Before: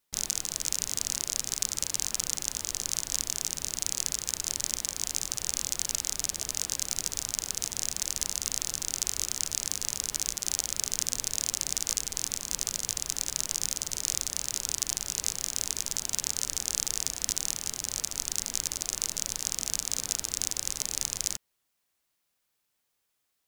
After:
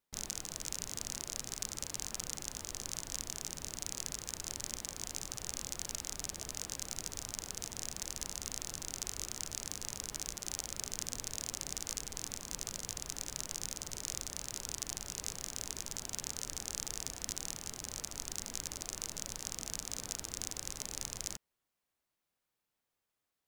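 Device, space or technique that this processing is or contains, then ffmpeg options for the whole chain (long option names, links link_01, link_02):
behind a face mask: -af "highshelf=frequency=2100:gain=-8,volume=-3dB"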